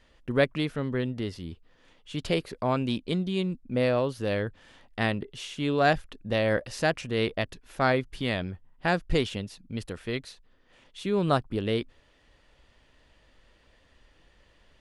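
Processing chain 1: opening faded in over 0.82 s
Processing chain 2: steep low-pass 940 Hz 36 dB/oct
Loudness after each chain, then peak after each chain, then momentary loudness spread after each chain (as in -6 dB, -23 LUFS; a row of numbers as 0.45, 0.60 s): -29.0, -30.0 LUFS; -10.0, -12.5 dBFS; 12, 12 LU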